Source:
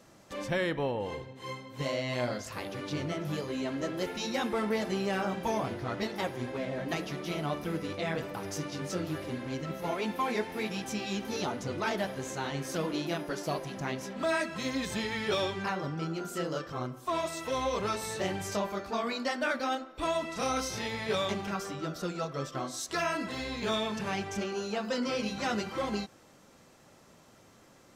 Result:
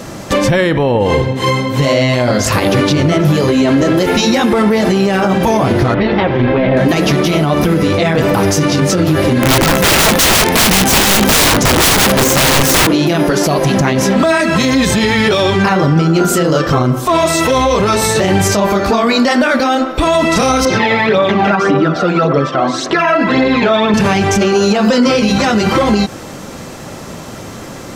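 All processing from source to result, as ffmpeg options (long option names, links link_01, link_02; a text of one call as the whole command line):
ffmpeg -i in.wav -filter_complex "[0:a]asettb=1/sr,asplit=3[link_01][link_02][link_03];[link_01]atrim=end=5.944[link_04];[link_02]atrim=start=5.94:end=6.77,asetpts=PTS-STARTPTS,afade=type=in:duration=0.004:curve=qsin,afade=type=out:start_time=0.826:duration=0.004:curve=qsin,lowpass=frequency=3400:width=0.5412,lowpass=frequency=3400:width=1.3066,tremolo=f=270:d=0.4[link_05];[link_03]atrim=start=6.766[link_06];[link_04][link_05]acrossfade=duration=0.004:curve1=hsin:curve2=qsin[link_07];[link_07][link_06]acrossfade=duration=0.004:curve1=qsin:curve2=hsin,asettb=1/sr,asplit=3[link_08][link_09][link_10];[link_08]atrim=end=9.404[link_11];[link_09]atrim=start=9.4:end=12.87,asetpts=PTS-STARTPTS,afade=type=in:duration=0.004:curve=qsin,afade=type=out:start_time=3.466:duration=0.004:curve=qsin,bandreject=frequency=50:width_type=h:width=6,bandreject=frequency=100:width_type=h:width=6,bandreject=frequency=150:width_type=h:width=6,bandreject=frequency=200:width_type=h:width=6,bandreject=frequency=250:width_type=h:width=6,bandreject=frequency=300:width_type=h:width=6,bandreject=frequency=350:width_type=h:width=6,bandreject=frequency=400:width_type=h:width=6,aeval=exprs='(mod(39.8*val(0)+1,2)-1)/39.8':channel_layout=same[link_12];[link_10]atrim=start=12.866[link_13];[link_11][link_12]acrossfade=duration=0.004:curve1=hsin:curve2=qsin[link_14];[link_14][link_13]acrossfade=duration=0.004:curve1=qsin:curve2=hsin,asettb=1/sr,asplit=3[link_15][link_16][link_17];[link_15]atrim=end=20.654[link_18];[link_16]atrim=start=20.65:end=23.94,asetpts=PTS-STARTPTS,afade=type=in:duration=0.004:curve=qsin,afade=type=out:start_time=3.286:duration=0.004:curve=qsin,highpass=230,lowpass=2500,aphaser=in_gain=1:out_gain=1:delay=1.6:decay=0.49:speed=1.8:type=triangular[link_19];[link_17]atrim=start=23.936[link_20];[link_18][link_19]acrossfade=duration=0.004:curve1=hsin:curve2=qsin[link_21];[link_21][link_20]acrossfade=duration=0.004:curve1=qsin:curve2=hsin,lowshelf=frequency=360:gain=4.5,acompressor=threshold=-31dB:ratio=6,alimiter=level_in=30.5dB:limit=-1dB:release=50:level=0:latency=1,volume=-2.5dB" out.wav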